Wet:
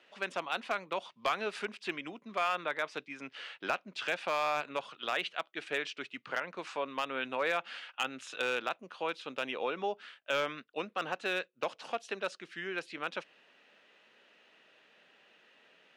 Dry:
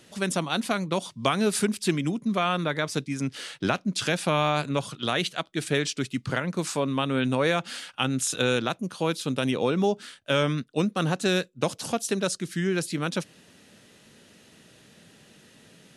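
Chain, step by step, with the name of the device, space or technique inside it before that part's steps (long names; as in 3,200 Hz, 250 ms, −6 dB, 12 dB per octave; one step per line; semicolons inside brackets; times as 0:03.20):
megaphone (band-pass filter 610–2,500 Hz; parametric band 2,700 Hz +5 dB 0.45 octaves; hard clipping −18.5 dBFS, distortion −19 dB)
level −4 dB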